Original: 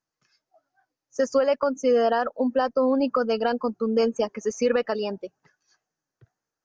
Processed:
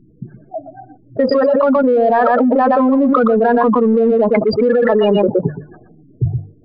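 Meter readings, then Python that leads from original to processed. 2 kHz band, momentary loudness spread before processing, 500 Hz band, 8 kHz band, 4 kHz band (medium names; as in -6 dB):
+10.0 dB, 7 LU, +10.0 dB, no reading, +4.5 dB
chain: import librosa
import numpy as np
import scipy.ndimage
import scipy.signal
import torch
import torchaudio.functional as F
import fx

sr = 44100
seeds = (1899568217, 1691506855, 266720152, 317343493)

p1 = fx.notch(x, sr, hz=520.0, q=12.0)
p2 = fx.env_lowpass(p1, sr, base_hz=300.0, full_db=-21.5)
p3 = fx.spec_gate(p2, sr, threshold_db=-15, keep='strong')
p4 = fx.hum_notches(p3, sr, base_hz=50, count=3)
p5 = 10.0 ** (-29.5 / 20.0) * np.tanh(p4 / 10.0 ** (-29.5 / 20.0))
p6 = p4 + (p5 * librosa.db_to_amplitude(-10.0))
p7 = fx.brickwall_lowpass(p6, sr, high_hz=5100.0)
p8 = p7 + 10.0 ** (-11.0 / 20.0) * np.pad(p7, (int(120 * sr / 1000.0), 0))[:len(p7)]
p9 = fx.env_flatten(p8, sr, amount_pct=100)
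y = p9 * librosa.db_to_amplitude(6.0)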